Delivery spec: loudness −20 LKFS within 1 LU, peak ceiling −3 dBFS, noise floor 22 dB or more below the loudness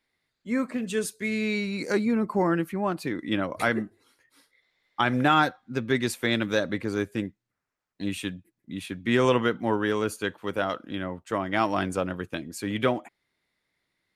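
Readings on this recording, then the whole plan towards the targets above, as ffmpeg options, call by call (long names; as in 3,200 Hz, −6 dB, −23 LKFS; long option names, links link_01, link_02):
integrated loudness −27.5 LKFS; sample peak −9.5 dBFS; target loudness −20.0 LKFS
→ -af "volume=7.5dB,alimiter=limit=-3dB:level=0:latency=1"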